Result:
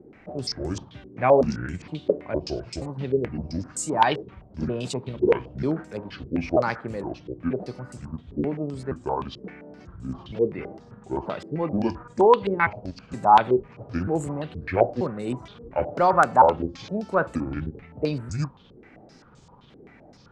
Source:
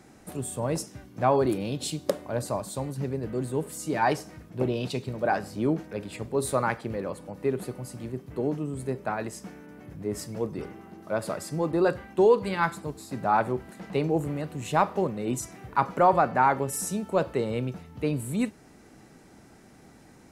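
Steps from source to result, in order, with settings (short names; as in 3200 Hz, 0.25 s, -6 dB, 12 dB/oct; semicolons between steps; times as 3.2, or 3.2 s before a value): trilling pitch shifter -8.5 st, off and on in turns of 0.469 s; stepped low-pass 7.7 Hz 420–7700 Hz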